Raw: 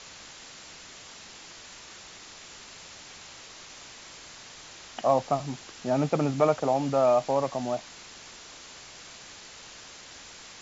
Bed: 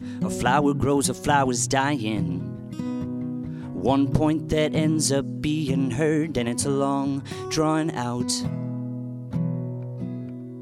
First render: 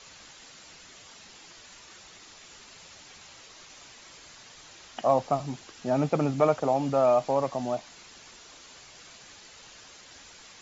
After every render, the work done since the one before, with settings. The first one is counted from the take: denoiser 6 dB, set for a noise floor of -47 dBFS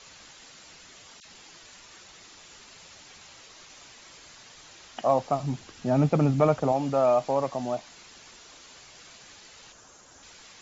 1.2–2.45 dispersion lows, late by 53 ms, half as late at 1800 Hz; 5.43–6.72 tone controls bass +8 dB, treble -1 dB; 9.72–10.23 band shelf 3000 Hz -8.5 dB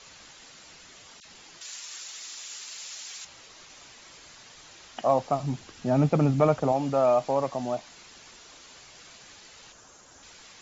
1.61–3.25 tilt +4.5 dB/oct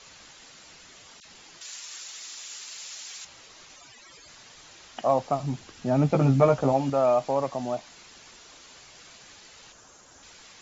3.76–4.28 spectral contrast raised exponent 2.3; 6.08–6.9 doubler 15 ms -4 dB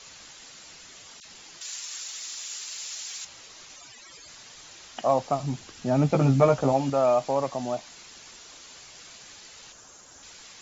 high shelf 4200 Hz +6 dB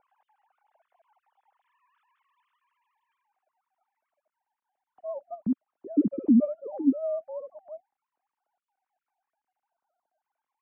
sine-wave speech; low-pass sweep 560 Hz -> 270 Hz, 2.29–4.06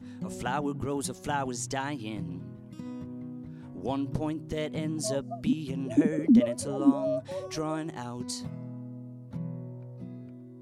add bed -10.5 dB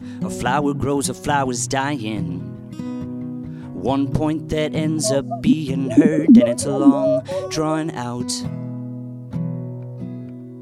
gain +11.5 dB; limiter -2 dBFS, peak gain reduction 2.5 dB

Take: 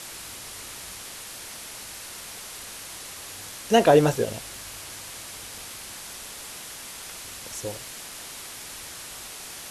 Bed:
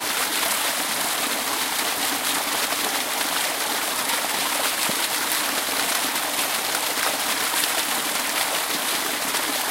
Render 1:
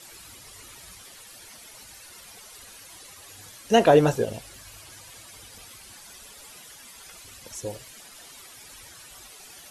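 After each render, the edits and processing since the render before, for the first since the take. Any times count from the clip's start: denoiser 12 dB, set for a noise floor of -40 dBFS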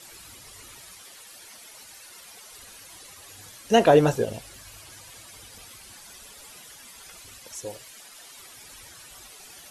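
0.81–2.49 low shelf 170 Hz -10.5 dB; 7.38–8.38 low shelf 290 Hz -9 dB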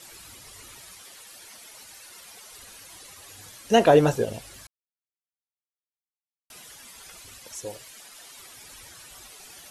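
4.67–6.5 mute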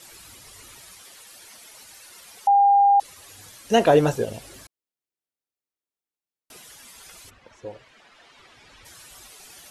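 2.47–3 bleep 803 Hz -12.5 dBFS; 4.41–6.57 bell 350 Hz +8.5 dB 1.7 oct; 7.29–8.84 LPF 1800 Hz -> 3800 Hz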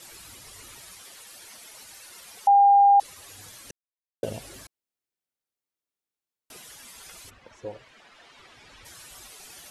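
3.71–4.23 mute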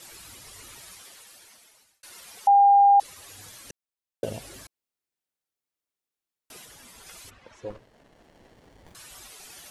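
0.92–2.03 fade out; 6.65–7.07 tilt shelf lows +4 dB, about 880 Hz; 7.7–8.95 running maximum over 33 samples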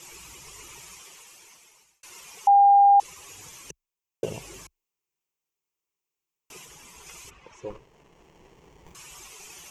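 ripple EQ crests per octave 0.74, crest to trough 9 dB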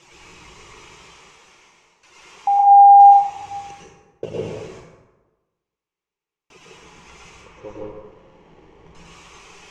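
air absorption 140 m; plate-style reverb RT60 1.2 s, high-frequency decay 0.55×, pre-delay 95 ms, DRR -5 dB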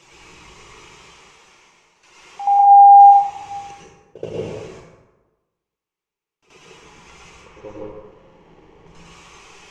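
reverse echo 77 ms -12 dB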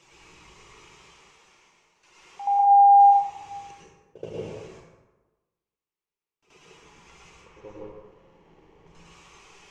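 gain -7.5 dB

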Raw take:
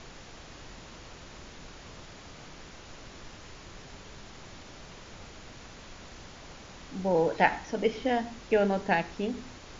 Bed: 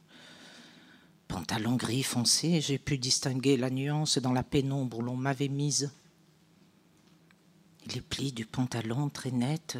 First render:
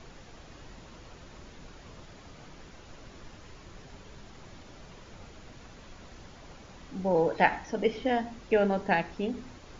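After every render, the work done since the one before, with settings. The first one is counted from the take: denoiser 6 dB, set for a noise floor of -48 dBFS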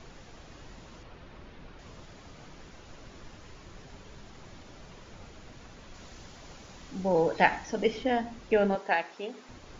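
1.03–1.79 LPF 3700 Hz; 5.94–8.03 high shelf 4000 Hz +7 dB; 8.75–9.49 HPF 460 Hz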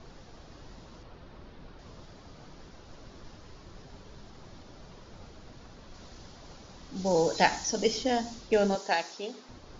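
low-pass opened by the level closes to 1800 Hz, open at -24.5 dBFS; resonant high shelf 3500 Hz +13 dB, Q 1.5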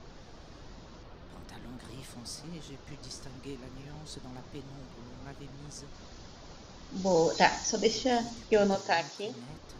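add bed -17.5 dB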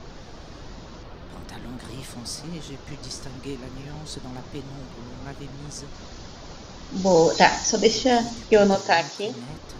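gain +8.5 dB; limiter -2 dBFS, peak gain reduction 2 dB

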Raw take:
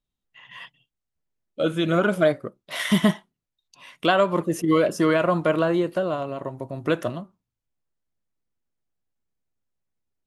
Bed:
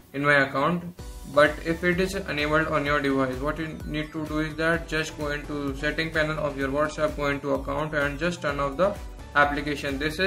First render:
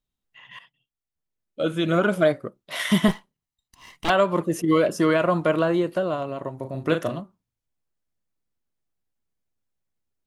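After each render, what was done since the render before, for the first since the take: 0.59–1.91 fade in, from -13 dB; 3.08–4.1 minimum comb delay 0.99 ms; 6.59–7.2 doubler 38 ms -6.5 dB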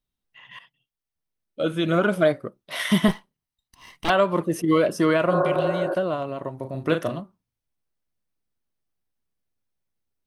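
notch 7100 Hz, Q 6.8; 5.34–5.92 spectral repair 300–1800 Hz both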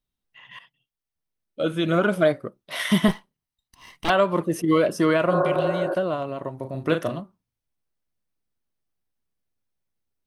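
nothing audible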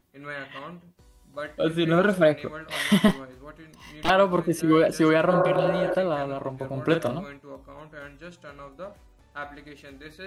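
add bed -16.5 dB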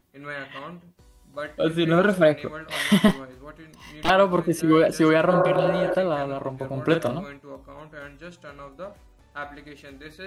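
gain +1.5 dB

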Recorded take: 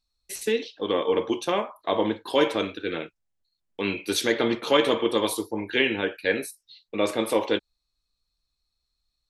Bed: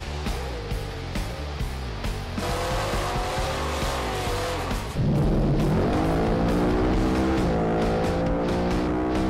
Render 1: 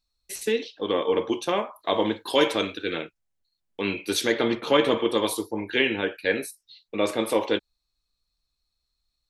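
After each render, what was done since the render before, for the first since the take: 1.73–3.02 high shelf 3000 Hz +7 dB; 4.55–4.98 tone controls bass +4 dB, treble -5 dB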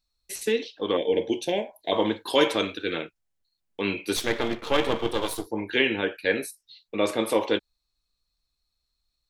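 0.97–1.92 Butterworth band-stop 1200 Hz, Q 1.1; 4.16–5.47 half-wave gain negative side -12 dB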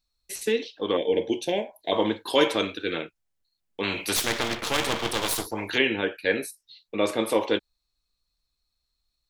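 3.83–5.78 spectral compressor 2:1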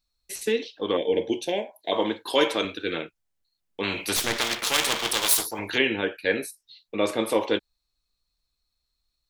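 1.47–2.65 HPF 220 Hz 6 dB/oct; 4.38–5.59 tilt +2.5 dB/oct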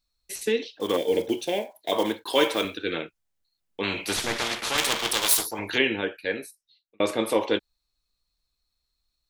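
0.8–2.77 block floating point 5-bit; 4.06–4.78 CVSD 64 kbps; 5.84–7 fade out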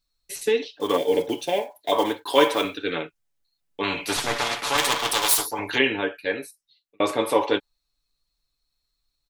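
dynamic EQ 940 Hz, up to +6 dB, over -42 dBFS, Q 1.4; comb 7 ms, depth 49%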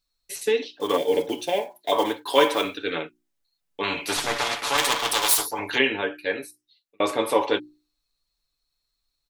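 low shelf 200 Hz -3.5 dB; notches 60/120/180/240/300/360 Hz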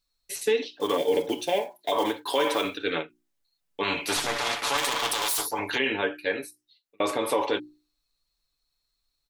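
limiter -14.5 dBFS, peak gain reduction 10.5 dB; ending taper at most 310 dB/s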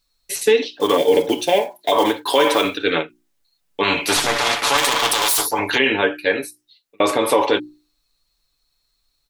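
gain +9 dB

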